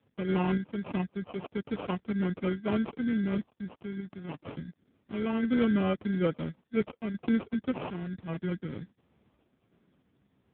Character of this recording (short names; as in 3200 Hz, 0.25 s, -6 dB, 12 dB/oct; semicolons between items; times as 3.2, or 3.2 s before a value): phasing stages 6, 0.19 Hz, lowest notch 590–2400 Hz; aliases and images of a low sample rate 1800 Hz, jitter 0%; random-step tremolo; AMR-NB